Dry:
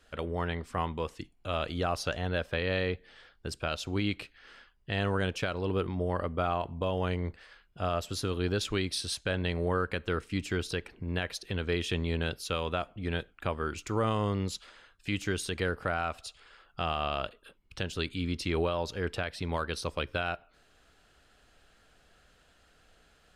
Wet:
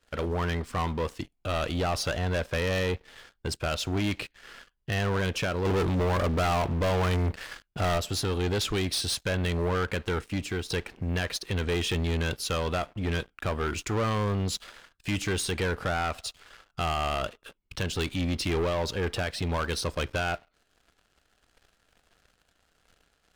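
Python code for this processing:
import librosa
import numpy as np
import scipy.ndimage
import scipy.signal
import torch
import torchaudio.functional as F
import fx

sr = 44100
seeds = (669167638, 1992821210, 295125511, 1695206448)

y = fx.leveller(x, sr, passes=2, at=(5.65, 7.98))
y = fx.edit(y, sr, fx.fade_out_to(start_s=9.78, length_s=0.92, curve='qsin', floor_db=-8.5), tone=tone)
y = fx.leveller(y, sr, passes=3)
y = y * 10.0 ** (-3.5 / 20.0)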